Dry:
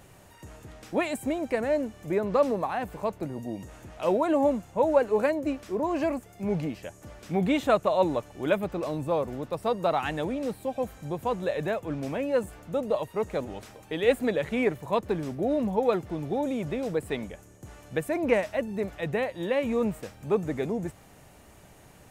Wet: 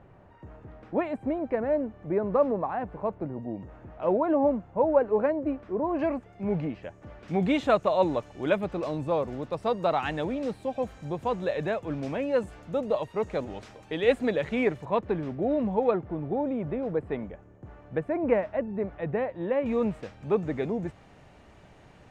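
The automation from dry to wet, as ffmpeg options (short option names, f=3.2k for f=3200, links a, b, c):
-af "asetnsamples=n=441:p=0,asendcmd='5.99 lowpass f 2400;7.28 lowpass f 5600;14.85 lowpass f 2700;15.91 lowpass f 1500;19.66 lowpass f 3900',lowpass=1.4k"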